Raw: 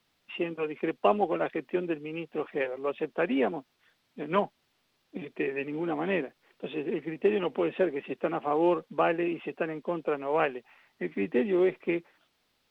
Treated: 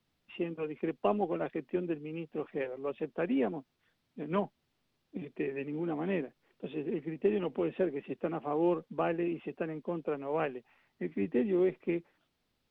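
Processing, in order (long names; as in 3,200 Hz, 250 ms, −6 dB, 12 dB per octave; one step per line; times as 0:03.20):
low-shelf EQ 350 Hz +11.5 dB
level −9 dB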